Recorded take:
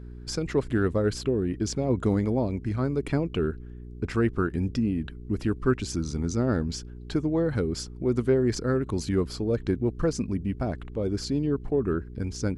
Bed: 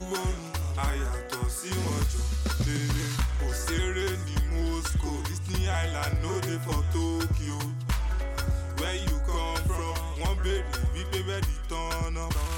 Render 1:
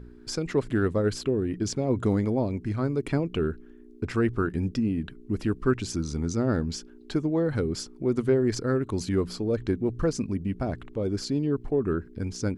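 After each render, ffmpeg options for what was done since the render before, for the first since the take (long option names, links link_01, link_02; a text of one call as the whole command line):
ffmpeg -i in.wav -af "bandreject=frequency=60:width_type=h:width=4,bandreject=frequency=120:width_type=h:width=4,bandreject=frequency=180:width_type=h:width=4" out.wav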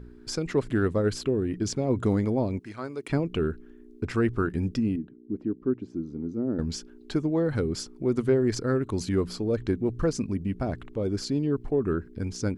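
ffmpeg -i in.wav -filter_complex "[0:a]asettb=1/sr,asplit=3[link_01][link_02][link_03];[link_01]atrim=end=2.594[link_04];[link_02]atrim=start=2.59:end=3.1,asetpts=PTS-STARTPTS,afade=type=in:duration=0.004:curve=qsin,afade=type=out:start_time=0.506:duration=0.004:curve=qsin,highpass=frequency=770:poles=1[link_05];[link_03]atrim=start=3.096[link_06];[link_04][link_05]acrossfade=duration=0.004:curve1=hsin:curve2=qsin[link_07];[link_07][link_06]acrossfade=duration=0.004:curve1=qsin:curve2=hsin,asettb=1/sr,asplit=3[link_08][link_09][link_10];[link_08]atrim=end=4.964[link_11];[link_09]atrim=start=4.96:end=6.59,asetpts=PTS-STARTPTS,afade=type=in:duration=0.004:curve=qsin,afade=type=out:start_time=1.626:duration=0.004:curve=qsin,bandpass=frequency=290:width_type=q:width=1.7[link_12];[link_10]atrim=start=6.586[link_13];[link_11][link_12]acrossfade=duration=0.004:curve1=hsin:curve2=qsin[link_14];[link_14][link_13]acrossfade=duration=0.004:curve1=qsin:curve2=hsin" out.wav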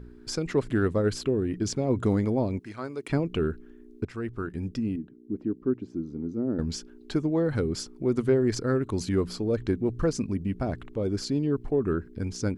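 ffmpeg -i in.wav -filter_complex "[0:a]asplit=2[link_01][link_02];[link_01]atrim=end=4.05,asetpts=PTS-STARTPTS,afade=type=out:start_time=4.046:duration=0.004:curve=hsin:silence=0.251189[link_03];[link_02]atrim=start=4.05,asetpts=PTS-STARTPTS,afade=type=in:duration=1.33:silence=0.251189[link_04];[link_03][link_04]concat=n=2:v=0:a=1" out.wav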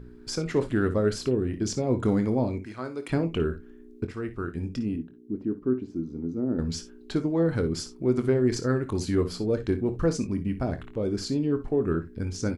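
ffmpeg -i in.wav -filter_complex "[0:a]asplit=2[link_01][link_02];[link_02]adelay=24,volume=-11dB[link_03];[link_01][link_03]amix=inputs=2:normalize=0,aecho=1:1:55|66:0.2|0.141" out.wav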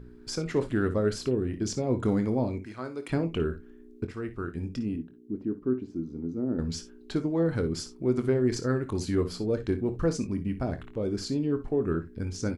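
ffmpeg -i in.wav -af "volume=-2dB" out.wav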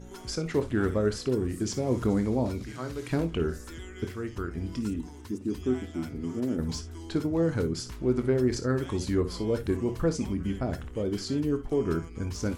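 ffmpeg -i in.wav -i bed.wav -filter_complex "[1:a]volume=-15dB[link_01];[0:a][link_01]amix=inputs=2:normalize=0" out.wav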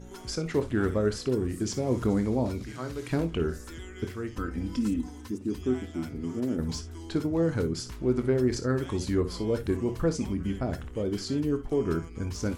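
ffmpeg -i in.wav -filter_complex "[0:a]asettb=1/sr,asplit=3[link_01][link_02][link_03];[link_01]atrim=end=4.364[link_04];[link_02]atrim=start=4.36:end=5.3,asetpts=PTS-STARTPTS,afade=type=in:duration=0.004:curve=qsin,afade=type=out:start_time=0.936:duration=0.004:curve=qsin,aecho=1:1:3.9:0.81,atrim=end_sample=41454[link_05];[link_03]atrim=start=5.296[link_06];[link_04][link_05]acrossfade=duration=0.004:curve1=hsin:curve2=qsin[link_07];[link_07][link_06]acrossfade=duration=0.004:curve1=qsin:curve2=hsin" out.wav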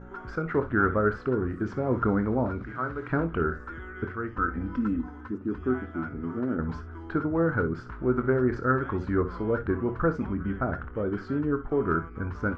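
ffmpeg -i in.wav -af "lowpass=frequency=1400:width_type=q:width=4.8" out.wav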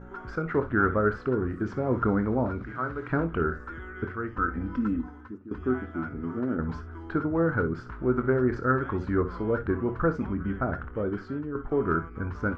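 ffmpeg -i in.wav -filter_complex "[0:a]asplit=3[link_01][link_02][link_03];[link_01]atrim=end=5.51,asetpts=PTS-STARTPTS,afade=type=out:start_time=4.96:duration=0.55:silence=0.16788[link_04];[link_02]atrim=start=5.51:end=11.55,asetpts=PTS-STARTPTS,afade=type=in:duration=0.004:curve=hsin:silence=0.16788,afade=type=out:start_time=5.54:duration=0.5:silence=0.334965[link_05];[link_03]atrim=start=11.55,asetpts=PTS-STARTPTS,afade=type=in:duration=0.004:curve=hsin:silence=0.334965[link_06];[link_04][link_05][link_06]concat=n=3:v=0:a=1" out.wav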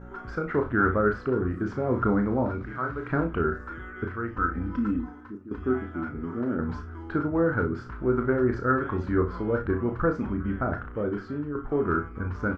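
ffmpeg -i in.wav -filter_complex "[0:a]asplit=2[link_01][link_02];[link_02]adelay=34,volume=-7dB[link_03];[link_01][link_03]amix=inputs=2:normalize=0" out.wav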